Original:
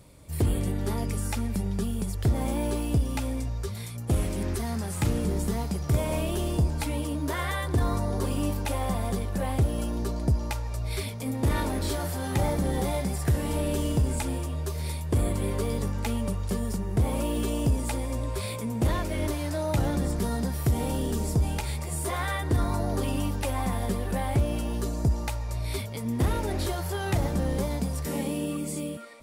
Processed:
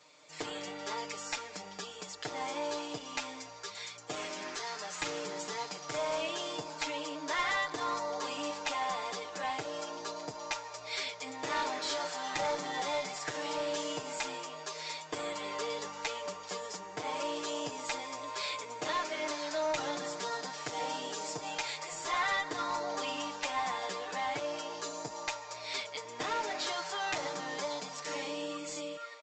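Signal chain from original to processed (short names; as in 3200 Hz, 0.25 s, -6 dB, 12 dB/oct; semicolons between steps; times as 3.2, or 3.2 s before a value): Bessel high-pass 960 Hz, order 2; comb 6.6 ms, depth 100%; one-sided clip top -29.5 dBFS; downsampling 16000 Hz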